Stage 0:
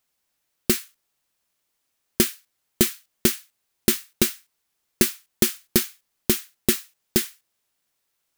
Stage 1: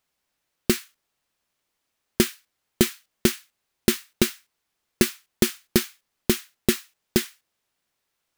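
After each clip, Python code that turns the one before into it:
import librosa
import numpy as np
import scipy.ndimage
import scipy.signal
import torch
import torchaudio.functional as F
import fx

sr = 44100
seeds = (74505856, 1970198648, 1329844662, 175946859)

y = fx.high_shelf(x, sr, hz=6000.0, db=-8.0)
y = y * 10.0 ** (1.5 / 20.0)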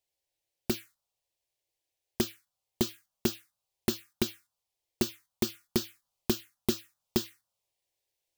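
y = fx.comb_fb(x, sr, f0_hz=110.0, decay_s=0.22, harmonics='odd', damping=0.0, mix_pct=60)
y = fx.rider(y, sr, range_db=4, speed_s=0.5)
y = fx.env_phaser(y, sr, low_hz=220.0, high_hz=2100.0, full_db=-24.5)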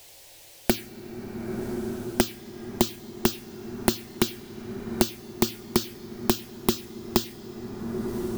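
y = fx.rev_plate(x, sr, seeds[0], rt60_s=4.1, hf_ratio=0.35, predelay_ms=0, drr_db=16.0)
y = fx.band_squash(y, sr, depth_pct=100)
y = y * 10.0 ** (7.0 / 20.0)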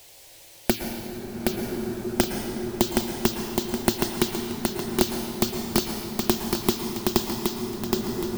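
y = fx.echo_feedback(x, sr, ms=770, feedback_pct=39, wet_db=-3.5)
y = fx.rev_plate(y, sr, seeds[1], rt60_s=2.1, hf_ratio=0.75, predelay_ms=100, drr_db=5.0)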